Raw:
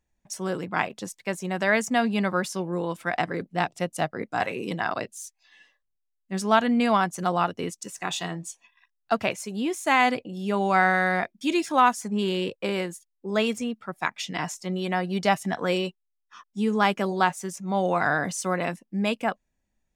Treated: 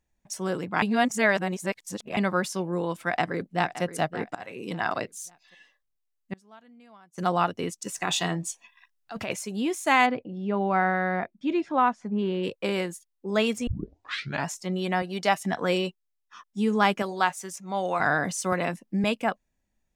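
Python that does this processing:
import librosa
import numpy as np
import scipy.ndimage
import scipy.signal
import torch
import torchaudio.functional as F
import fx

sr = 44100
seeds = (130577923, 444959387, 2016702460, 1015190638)

y = fx.echo_throw(x, sr, start_s=3.06, length_s=0.77, ms=570, feedback_pct=30, wet_db=-13.0)
y = fx.gate_flip(y, sr, shuts_db=-23.0, range_db=-31, at=(6.33, 7.18))
y = fx.over_compress(y, sr, threshold_db=-30.0, ratio=-1.0, at=(7.85, 9.38), fade=0.02)
y = fx.spacing_loss(y, sr, db_at_10k=34, at=(10.05, 12.43), fade=0.02)
y = fx.highpass(y, sr, hz=360.0, slope=6, at=(15.02, 15.45))
y = fx.low_shelf(y, sr, hz=420.0, db=-10.0, at=(17.02, 18.0))
y = fx.band_squash(y, sr, depth_pct=70, at=(18.52, 19.04))
y = fx.edit(y, sr, fx.reverse_span(start_s=0.82, length_s=1.35),
    fx.fade_in_from(start_s=4.35, length_s=0.51, floor_db=-24.0),
    fx.tape_start(start_s=13.67, length_s=0.81), tone=tone)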